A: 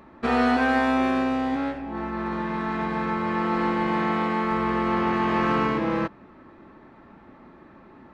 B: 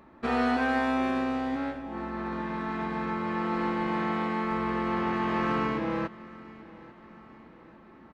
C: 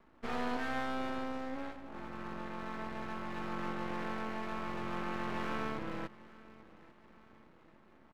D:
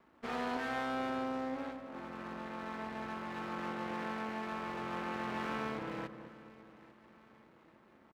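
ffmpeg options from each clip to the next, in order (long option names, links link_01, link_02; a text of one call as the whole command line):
ffmpeg -i in.wav -af "aecho=1:1:841|1682|2523|3364:0.1|0.052|0.027|0.0141,volume=-5dB" out.wav
ffmpeg -i in.wav -af "aeval=exprs='max(val(0),0)':channel_layout=same,volume=-6dB" out.wav
ffmpeg -i in.wav -filter_complex "[0:a]highpass=frequency=130:poles=1,asplit=2[link_01][link_02];[link_02]adelay=214,lowpass=frequency=1100:poles=1,volume=-10dB,asplit=2[link_03][link_04];[link_04]adelay=214,lowpass=frequency=1100:poles=1,volume=0.48,asplit=2[link_05][link_06];[link_06]adelay=214,lowpass=frequency=1100:poles=1,volume=0.48,asplit=2[link_07][link_08];[link_08]adelay=214,lowpass=frequency=1100:poles=1,volume=0.48,asplit=2[link_09][link_10];[link_10]adelay=214,lowpass=frequency=1100:poles=1,volume=0.48[link_11];[link_01][link_03][link_05][link_07][link_09][link_11]amix=inputs=6:normalize=0" out.wav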